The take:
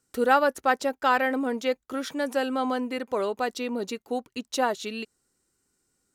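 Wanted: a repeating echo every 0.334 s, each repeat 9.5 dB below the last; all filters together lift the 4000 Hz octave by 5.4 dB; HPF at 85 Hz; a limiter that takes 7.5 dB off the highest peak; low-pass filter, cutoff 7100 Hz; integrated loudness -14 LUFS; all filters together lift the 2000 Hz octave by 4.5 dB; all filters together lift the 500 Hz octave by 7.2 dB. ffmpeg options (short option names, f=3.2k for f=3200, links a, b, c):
-af "highpass=85,lowpass=7.1k,equalizer=f=500:t=o:g=7.5,equalizer=f=2k:t=o:g=4.5,equalizer=f=4k:t=o:g=5.5,alimiter=limit=-11dB:level=0:latency=1,aecho=1:1:334|668|1002|1336:0.335|0.111|0.0365|0.012,volume=9.5dB"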